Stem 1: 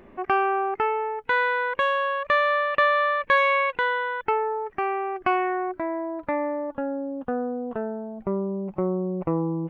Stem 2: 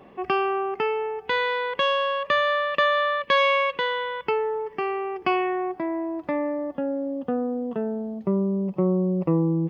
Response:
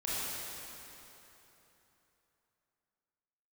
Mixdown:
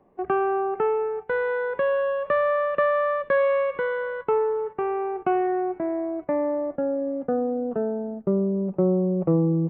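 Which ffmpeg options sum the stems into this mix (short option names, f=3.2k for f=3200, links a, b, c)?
-filter_complex "[0:a]acrossover=split=3100[a][b];[b]acompressor=threshold=-53dB:ratio=4:attack=1:release=60[c];[a][c]amix=inputs=2:normalize=0,highshelf=f=3.5k:g=-7.5,volume=-8dB,asplit=2[d][e];[e]volume=-17.5dB[f];[1:a]lowpass=f=1.1k:w=0.5412,lowpass=f=1.1k:w=1.3066,volume=-1,volume=1dB[g];[2:a]atrim=start_sample=2205[h];[f][h]afir=irnorm=-1:irlink=0[i];[d][g][i]amix=inputs=3:normalize=0,agate=range=-12dB:threshold=-33dB:ratio=16:detection=peak,bandreject=f=46.32:t=h:w=4,bandreject=f=92.64:t=h:w=4,bandreject=f=138.96:t=h:w=4"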